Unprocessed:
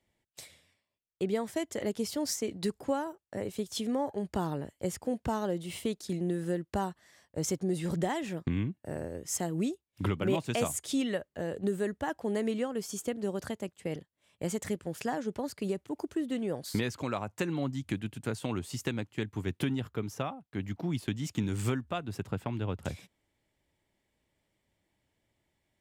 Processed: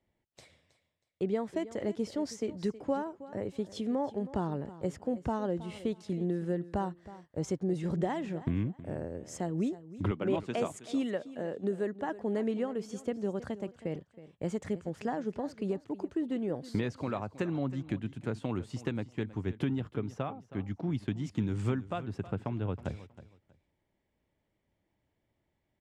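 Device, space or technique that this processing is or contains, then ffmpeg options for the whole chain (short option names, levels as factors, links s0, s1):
through cloth: -filter_complex "[0:a]asettb=1/sr,asplit=3[s0][s1][s2];[s0]atrim=end=10.114[s3];[s1]atrim=start=10.11:end=12.09,asetpts=PTS-STARTPTS,afade=t=in:d=0.004:c=qsin,afade=t=out:st=1.976:d=0.004:c=qsin,highpass=190[s4];[s2]atrim=start=12.086[s5];[s3][s4]acrossfade=d=0.004:c1=hsin:c2=qsin[s6];[s6][s5]acrossfade=d=0.004:c1=qsin:c2=hsin,lowpass=7000,highshelf=f=2200:g=-11,highshelf=f=9800:g=3.5,aecho=1:1:319|638:0.158|0.0365"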